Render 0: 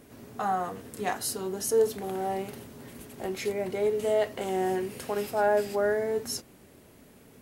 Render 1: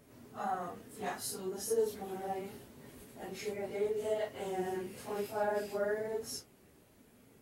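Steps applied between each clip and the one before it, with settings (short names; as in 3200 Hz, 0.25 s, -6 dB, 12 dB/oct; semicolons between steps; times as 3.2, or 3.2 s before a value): phase scrambler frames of 0.1 s; gain -8 dB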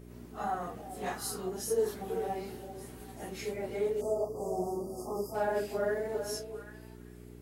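delay with a stepping band-pass 0.392 s, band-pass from 490 Hz, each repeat 1.4 oct, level -7 dB; spectral delete 4.01–5.35, 1300–4600 Hz; buzz 60 Hz, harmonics 7, -52 dBFS -2 dB/oct; gain +2 dB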